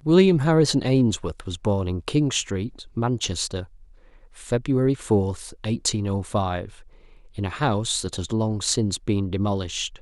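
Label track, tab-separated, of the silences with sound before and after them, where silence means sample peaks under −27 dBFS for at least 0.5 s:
3.620000	4.500000	silence
6.650000	7.390000	silence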